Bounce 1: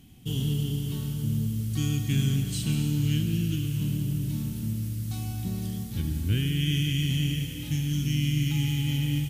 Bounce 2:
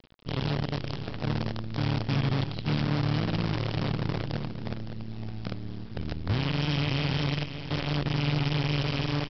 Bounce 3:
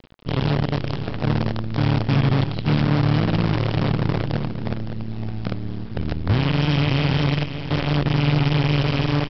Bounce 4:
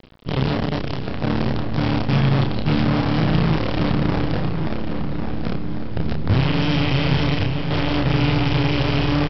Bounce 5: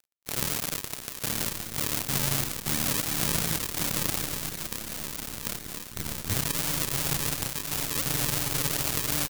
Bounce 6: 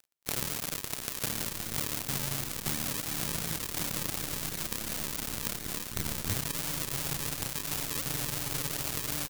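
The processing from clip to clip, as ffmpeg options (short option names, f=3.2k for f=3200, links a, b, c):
-af "highshelf=f=3.8k:g=-11.5,aresample=11025,acrusher=bits=5:dc=4:mix=0:aa=0.000001,aresample=44100,aecho=1:1:562:0.316,volume=-3dB"
-af "highshelf=f=4.6k:g=-10.5,volume=8.5dB"
-filter_complex "[0:a]areverse,acompressor=mode=upward:threshold=-31dB:ratio=2.5,areverse,asplit=2[a][b];[b]adelay=31,volume=-4.5dB[c];[a][c]amix=inputs=2:normalize=0,asplit=2[d][e];[e]adelay=1099,lowpass=f=2.3k:p=1,volume=-7dB,asplit=2[f][g];[g]adelay=1099,lowpass=f=2.3k:p=1,volume=0.44,asplit=2[h][i];[i]adelay=1099,lowpass=f=2.3k:p=1,volume=0.44,asplit=2[j][k];[k]adelay=1099,lowpass=f=2.3k:p=1,volume=0.44,asplit=2[l][m];[m]adelay=1099,lowpass=f=2.3k:p=1,volume=0.44[n];[d][f][h][j][l][n]amix=inputs=6:normalize=0"
-af "acrusher=samples=42:mix=1:aa=0.000001:lfo=1:lforange=42:lforate=2.8,crystalizer=i=5.5:c=0,aeval=exprs='sgn(val(0))*max(abs(val(0))-0.0891,0)':c=same,volume=-10.5dB"
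-af "acompressor=threshold=-30dB:ratio=6,volume=3.5dB"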